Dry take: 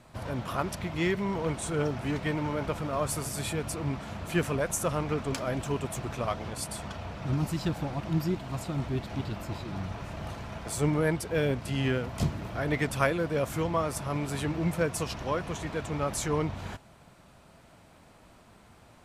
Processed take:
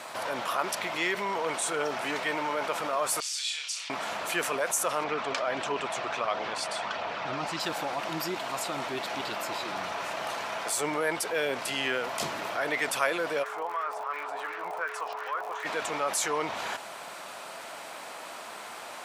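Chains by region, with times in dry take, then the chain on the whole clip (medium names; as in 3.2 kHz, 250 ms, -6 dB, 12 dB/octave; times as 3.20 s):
3.20–3.90 s: Butterworth band-pass 4.4 kHz, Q 1.2 + flutter echo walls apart 5.8 m, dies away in 0.31 s
5.04–7.60 s: low-pass 4.5 kHz + phaser 1.5 Hz, delay 1.8 ms, feedback 25%
13.42–15.64 s: wah-wah 2.7 Hz 740–1700 Hz, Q 2.8 + crackle 71 per s -48 dBFS + whistle 430 Hz -50 dBFS
whole clip: high-pass 630 Hz 12 dB/octave; level flattener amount 50%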